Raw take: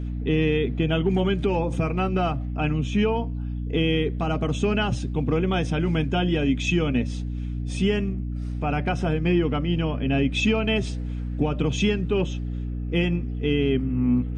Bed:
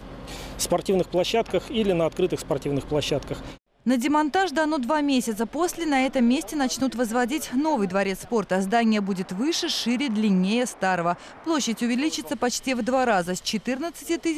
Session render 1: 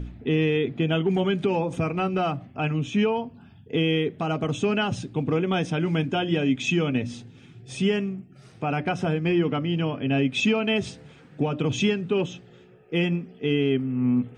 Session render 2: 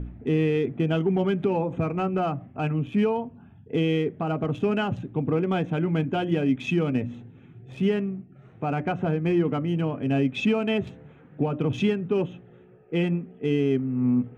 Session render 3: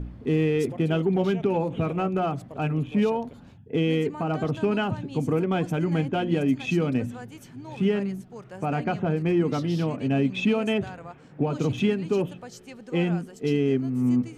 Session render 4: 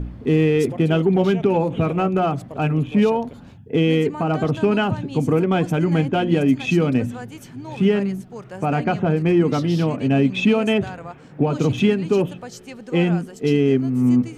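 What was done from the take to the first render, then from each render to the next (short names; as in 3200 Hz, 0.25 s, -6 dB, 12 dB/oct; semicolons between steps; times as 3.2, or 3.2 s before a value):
de-hum 60 Hz, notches 5
Wiener smoothing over 9 samples; LPF 2000 Hz 6 dB/oct
add bed -18.5 dB
gain +6 dB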